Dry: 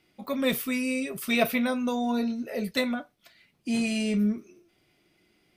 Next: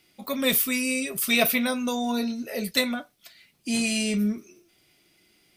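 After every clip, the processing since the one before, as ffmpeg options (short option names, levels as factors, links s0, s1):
-af "highshelf=f=3100:g=12"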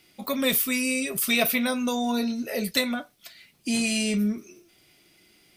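-af "acompressor=threshold=0.0282:ratio=1.5,volume=1.5"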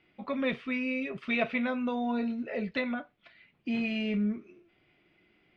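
-af "lowpass=f=2700:w=0.5412,lowpass=f=2700:w=1.3066,volume=0.596"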